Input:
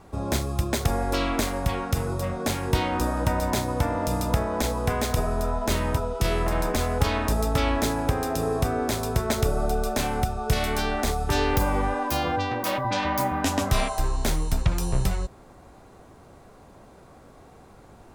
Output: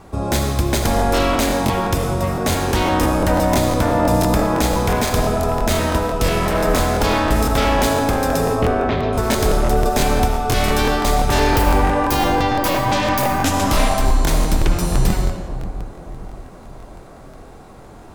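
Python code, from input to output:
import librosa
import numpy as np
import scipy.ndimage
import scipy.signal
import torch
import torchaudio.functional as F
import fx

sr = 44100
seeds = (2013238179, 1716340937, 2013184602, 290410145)

y = 10.0 ** (-17.5 / 20.0) * (np.abs((x / 10.0 ** (-17.5 / 20.0) + 3.0) % 4.0 - 2.0) - 1.0)
y = fx.lowpass(y, sr, hz=3200.0, slope=24, at=(8.55, 9.13))
y = fx.echo_wet_lowpass(y, sr, ms=572, feedback_pct=47, hz=870.0, wet_db=-11.5)
y = fx.rev_freeverb(y, sr, rt60_s=1.3, hf_ratio=0.9, predelay_ms=35, drr_db=4.0)
y = fx.buffer_crackle(y, sr, first_s=0.97, period_s=0.17, block=1024, kind='repeat')
y = F.gain(torch.from_numpy(y), 7.0).numpy()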